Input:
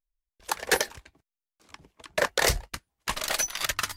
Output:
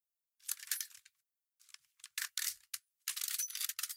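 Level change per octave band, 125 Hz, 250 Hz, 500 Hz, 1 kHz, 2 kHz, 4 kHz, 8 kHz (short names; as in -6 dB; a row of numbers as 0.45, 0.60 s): under -40 dB, under -40 dB, under -40 dB, -27.0 dB, -18.0 dB, -11.5 dB, -8.0 dB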